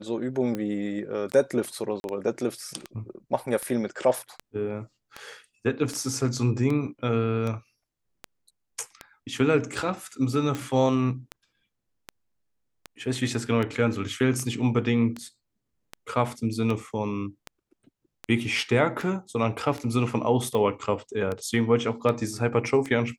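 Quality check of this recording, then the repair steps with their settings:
scratch tick 78 rpm −18 dBFS
0:02.00–0:02.04: drop-out 41 ms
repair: click removal
repair the gap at 0:02.00, 41 ms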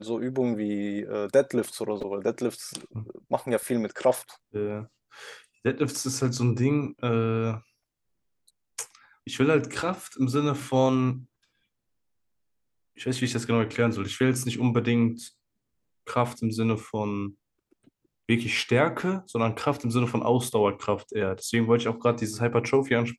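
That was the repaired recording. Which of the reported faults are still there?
none of them is left

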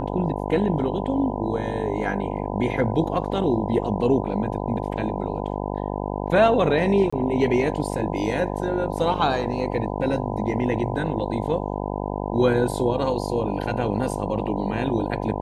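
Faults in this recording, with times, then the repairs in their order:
mains buzz 50 Hz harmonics 20 −28 dBFS
0:07.10–0:07.12: drop-out 25 ms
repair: hum removal 50 Hz, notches 20
repair the gap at 0:07.10, 25 ms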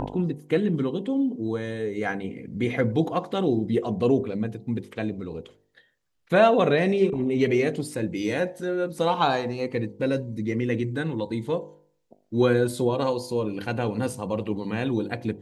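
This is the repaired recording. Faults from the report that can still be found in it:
none of them is left

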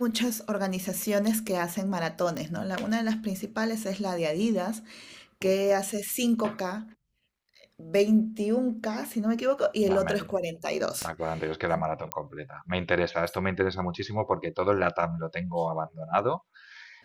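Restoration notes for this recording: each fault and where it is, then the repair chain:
0:02.37: click −19 dBFS
0:11.02: click −17 dBFS
0:12.12: click −11 dBFS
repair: click removal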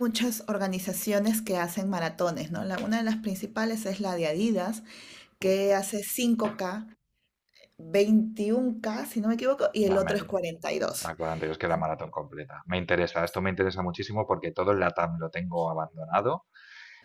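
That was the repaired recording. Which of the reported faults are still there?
0:11.02: click

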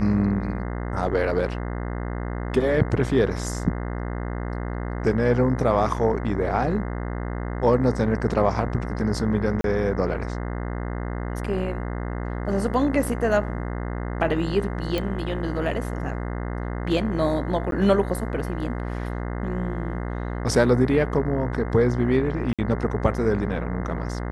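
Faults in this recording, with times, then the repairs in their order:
mains buzz 60 Hz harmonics 35 −29 dBFS
0:09.61–0:09.64: drop-out 32 ms
0:14.98: click
0:17.71–0:17.72: drop-out 12 ms
0:22.53–0:22.59: drop-out 56 ms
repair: click removal
hum removal 60 Hz, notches 35
repair the gap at 0:09.61, 32 ms
repair the gap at 0:17.71, 12 ms
repair the gap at 0:22.53, 56 ms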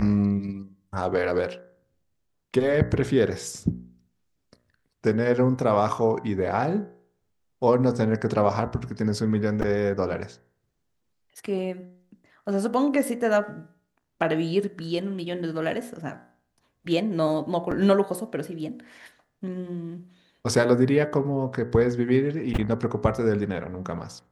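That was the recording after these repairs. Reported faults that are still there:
none of them is left

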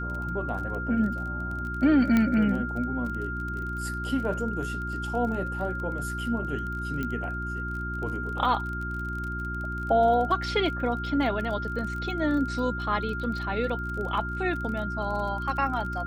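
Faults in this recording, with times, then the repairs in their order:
surface crackle 26 per second −34 dBFS
mains hum 60 Hz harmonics 6 −34 dBFS
whistle 1,400 Hz −33 dBFS
0:02.17: click −12 dBFS
0:07.03: click −19 dBFS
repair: click removal
hum removal 60 Hz, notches 6
notch filter 1,400 Hz, Q 30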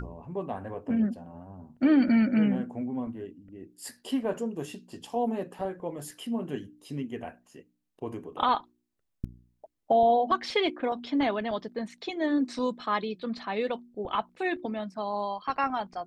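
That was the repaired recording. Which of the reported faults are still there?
none of them is left

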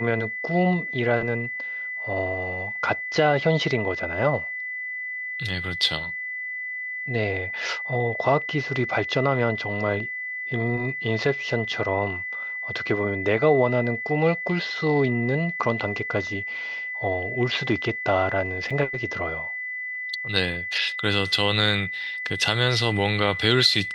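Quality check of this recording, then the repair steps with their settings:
whistle 2,000 Hz −29 dBFS
0:18.70: drop-out 4.9 ms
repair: notch filter 2,000 Hz, Q 30
repair the gap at 0:18.70, 4.9 ms

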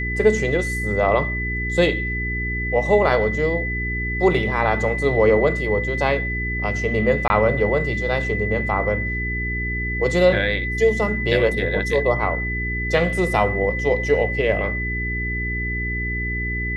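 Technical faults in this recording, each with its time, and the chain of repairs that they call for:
mains hum 60 Hz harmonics 7 −27 dBFS
whistle 2,000 Hz −25 dBFS
0:07.28–0:07.30: drop-out 20 ms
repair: hum removal 60 Hz, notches 7
notch filter 2,000 Hz, Q 30
repair the gap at 0:07.28, 20 ms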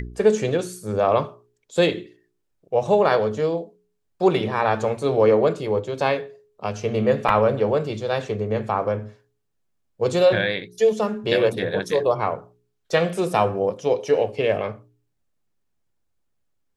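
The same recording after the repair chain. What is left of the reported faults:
none of them is left

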